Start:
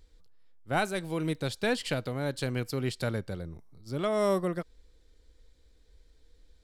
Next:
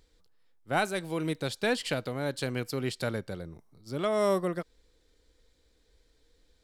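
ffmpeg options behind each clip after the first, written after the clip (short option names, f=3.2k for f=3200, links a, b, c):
-af "lowshelf=f=100:g=-10.5,volume=1dB"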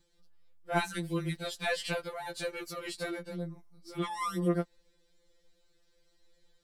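-af "afftfilt=real='re*2.83*eq(mod(b,8),0)':imag='im*2.83*eq(mod(b,8),0)':win_size=2048:overlap=0.75"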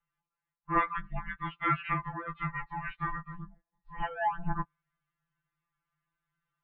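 -af "highpass=f=260:t=q:w=0.5412,highpass=f=260:t=q:w=1.307,lowpass=f=2.9k:t=q:w=0.5176,lowpass=f=2.9k:t=q:w=0.7071,lowpass=f=2.9k:t=q:w=1.932,afreqshift=-360,equalizer=f=500:t=o:w=1:g=-8,equalizer=f=1k:t=o:w=1:g=11,equalizer=f=2k:t=o:w=1:g=4,afftdn=nr=12:nf=-47"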